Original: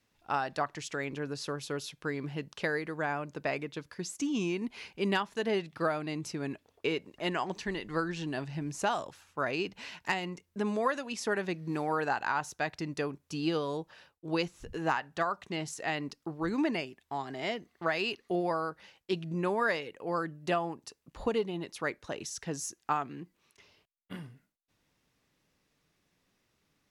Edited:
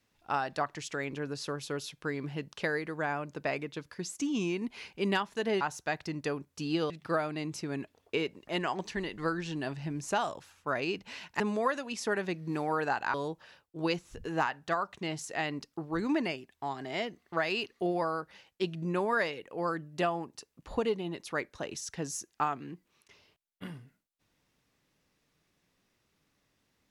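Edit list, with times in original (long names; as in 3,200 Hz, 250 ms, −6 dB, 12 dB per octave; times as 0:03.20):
0:10.11–0:10.60: remove
0:12.34–0:13.63: move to 0:05.61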